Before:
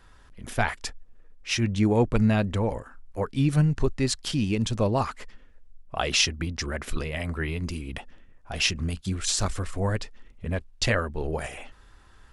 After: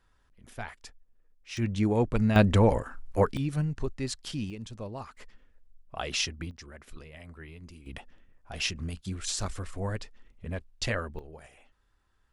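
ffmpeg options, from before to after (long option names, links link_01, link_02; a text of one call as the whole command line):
ffmpeg -i in.wav -af "asetnsamples=nb_out_samples=441:pad=0,asendcmd='1.57 volume volume -4dB;2.36 volume volume 5dB;3.37 volume volume -8dB;4.5 volume volume -15dB;5.17 volume volume -7.5dB;6.51 volume volume -16.5dB;7.86 volume volume -6.5dB;11.19 volume volume -18dB',volume=-14dB" out.wav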